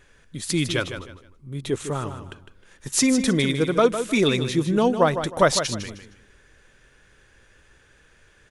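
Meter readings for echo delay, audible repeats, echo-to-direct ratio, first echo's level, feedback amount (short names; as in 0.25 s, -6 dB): 0.155 s, 3, -9.0 dB, -9.5 dB, 27%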